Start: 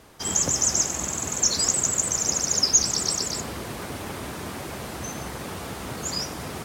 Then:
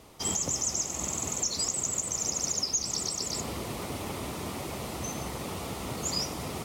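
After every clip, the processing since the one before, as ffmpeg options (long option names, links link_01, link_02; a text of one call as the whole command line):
ffmpeg -i in.wav -af "equalizer=frequency=1600:width=5.4:gain=-12,alimiter=limit=-17.5dB:level=0:latency=1:release=403,volume=-1.5dB" out.wav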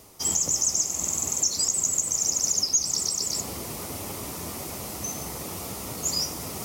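ffmpeg -i in.wav -af "aexciter=amount=3.5:drive=1.7:freq=5000,areverse,acompressor=mode=upward:threshold=-31dB:ratio=2.5,areverse,flanger=delay=9.3:depth=3.8:regen=74:speed=1.2:shape=triangular,volume=3dB" out.wav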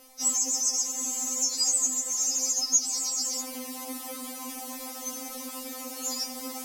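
ffmpeg -i in.wav -af "afftfilt=real='re*3.46*eq(mod(b,12),0)':imag='im*3.46*eq(mod(b,12),0)':win_size=2048:overlap=0.75" out.wav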